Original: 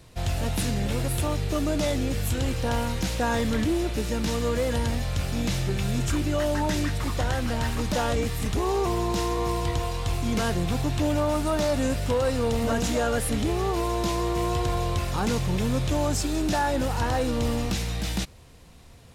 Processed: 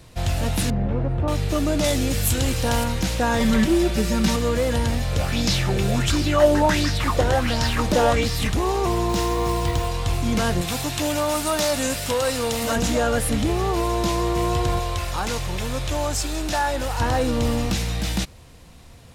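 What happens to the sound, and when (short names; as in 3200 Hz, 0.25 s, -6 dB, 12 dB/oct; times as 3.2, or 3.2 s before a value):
0.7–1.28 LPF 1100 Hz
1.84–2.84 high shelf 3900 Hz +8 dB
3.4–4.36 comb 5.2 ms, depth 96%
5.11–8.5 LFO bell 1.4 Hz 370–5300 Hz +12 dB
9.09–9.88 companded quantiser 6-bit
10.61–12.76 tilt +2.5 dB/oct
14.79–17 bell 190 Hz -11.5 dB 1.9 oct
whole clip: notch 410 Hz, Q 12; gain +4 dB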